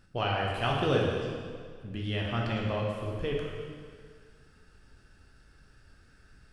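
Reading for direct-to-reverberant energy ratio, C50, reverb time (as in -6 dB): -2.5 dB, 1.0 dB, 1.9 s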